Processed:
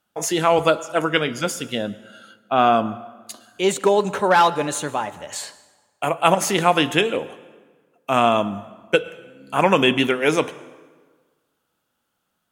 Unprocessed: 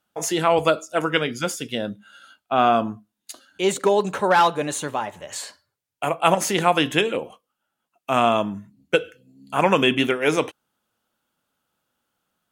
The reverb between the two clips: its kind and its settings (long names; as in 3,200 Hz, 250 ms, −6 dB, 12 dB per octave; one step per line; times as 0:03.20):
dense smooth reverb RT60 1.5 s, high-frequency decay 0.7×, pre-delay 95 ms, DRR 18 dB
level +1.5 dB